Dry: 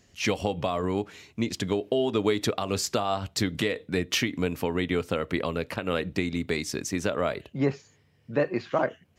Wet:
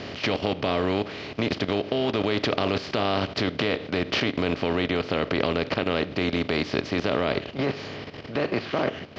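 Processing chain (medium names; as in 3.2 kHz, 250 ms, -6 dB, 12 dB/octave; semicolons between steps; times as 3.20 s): spectral levelling over time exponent 0.4; steep low-pass 4.9 kHz 36 dB/octave; level held to a coarse grid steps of 12 dB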